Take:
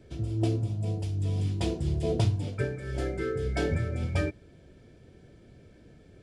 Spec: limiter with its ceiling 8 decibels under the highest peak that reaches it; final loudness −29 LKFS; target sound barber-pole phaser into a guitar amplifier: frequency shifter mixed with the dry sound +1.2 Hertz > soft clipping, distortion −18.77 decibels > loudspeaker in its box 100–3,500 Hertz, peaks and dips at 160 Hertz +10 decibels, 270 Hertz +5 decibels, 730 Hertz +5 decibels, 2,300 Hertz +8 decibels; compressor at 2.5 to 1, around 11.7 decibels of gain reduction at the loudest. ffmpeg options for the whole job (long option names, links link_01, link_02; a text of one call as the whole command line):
ffmpeg -i in.wav -filter_complex "[0:a]acompressor=threshold=-39dB:ratio=2.5,alimiter=level_in=8.5dB:limit=-24dB:level=0:latency=1,volume=-8.5dB,asplit=2[link_01][link_02];[link_02]afreqshift=1.2[link_03];[link_01][link_03]amix=inputs=2:normalize=1,asoftclip=threshold=-36.5dB,highpass=100,equalizer=frequency=160:width_type=q:width=4:gain=10,equalizer=frequency=270:width_type=q:width=4:gain=5,equalizer=frequency=730:width_type=q:width=4:gain=5,equalizer=frequency=2300:width_type=q:width=4:gain=8,lowpass=frequency=3500:width=0.5412,lowpass=frequency=3500:width=1.3066,volume=17dB" out.wav